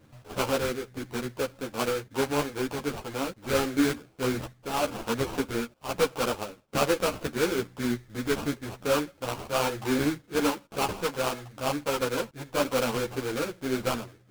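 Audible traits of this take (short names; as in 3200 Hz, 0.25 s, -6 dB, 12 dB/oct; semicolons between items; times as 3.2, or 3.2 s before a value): aliases and images of a low sample rate 1900 Hz, jitter 20%; a shimmering, thickened sound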